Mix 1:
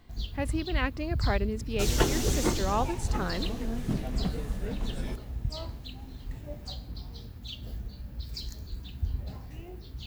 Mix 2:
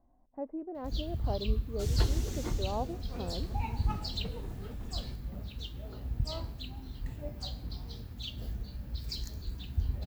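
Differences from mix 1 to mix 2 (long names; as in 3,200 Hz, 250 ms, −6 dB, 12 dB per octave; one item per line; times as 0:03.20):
speech: add transistor ladder low-pass 870 Hz, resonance 35%
first sound: entry +0.75 s
second sound −11.5 dB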